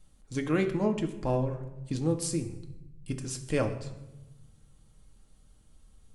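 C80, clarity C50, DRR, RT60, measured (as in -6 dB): 13.0 dB, 11.0 dB, 3.5 dB, 1.0 s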